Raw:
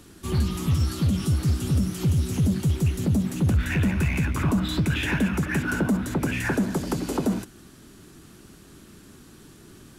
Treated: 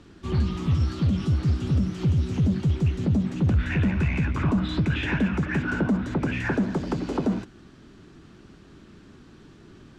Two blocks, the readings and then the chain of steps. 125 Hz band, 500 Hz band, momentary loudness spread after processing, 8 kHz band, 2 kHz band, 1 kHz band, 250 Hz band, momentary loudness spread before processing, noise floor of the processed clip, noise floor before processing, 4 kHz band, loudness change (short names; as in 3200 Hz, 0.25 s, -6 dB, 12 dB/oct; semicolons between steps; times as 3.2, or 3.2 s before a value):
0.0 dB, -0.5 dB, 4 LU, under -10 dB, -1.5 dB, -0.5 dB, 0.0 dB, 3 LU, -51 dBFS, -50 dBFS, -4.0 dB, -0.5 dB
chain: air absorption 150 m